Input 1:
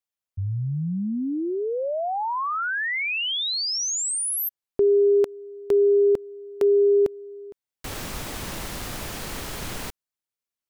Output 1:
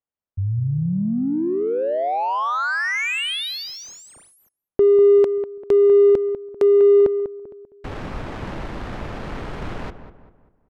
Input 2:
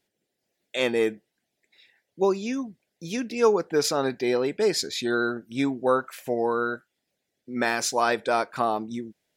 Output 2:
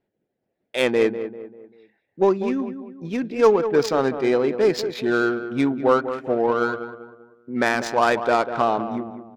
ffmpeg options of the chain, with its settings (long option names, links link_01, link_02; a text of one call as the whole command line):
ffmpeg -i in.wav -filter_complex "[0:a]asplit=2[link_01][link_02];[link_02]adelay=196,lowpass=frequency=2600:poles=1,volume=-10dB,asplit=2[link_03][link_04];[link_04]adelay=196,lowpass=frequency=2600:poles=1,volume=0.42,asplit=2[link_05][link_06];[link_06]adelay=196,lowpass=frequency=2600:poles=1,volume=0.42,asplit=2[link_07][link_08];[link_08]adelay=196,lowpass=frequency=2600:poles=1,volume=0.42[link_09];[link_01][link_03][link_05][link_07][link_09]amix=inputs=5:normalize=0,adynamicsmooth=sensitivity=2:basefreq=1400,volume=4.5dB" out.wav